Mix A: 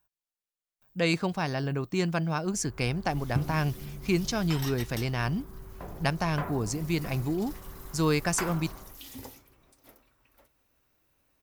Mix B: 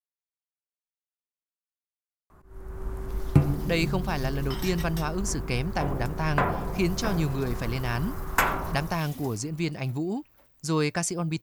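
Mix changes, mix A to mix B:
speech: entry +2.70 s; first sound +11.0 dB

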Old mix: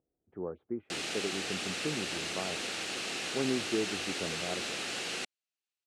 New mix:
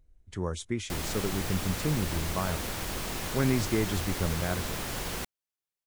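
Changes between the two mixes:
speech: remove low-pass 1 kHz 24 dB/octave; master: remove cabinet simulation 310–8700 Hz, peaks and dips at 590 Hz -4 dB, 990 Hz -10 dB, 2.7 kHz +7 dB, 4.1 kHz +4 dB

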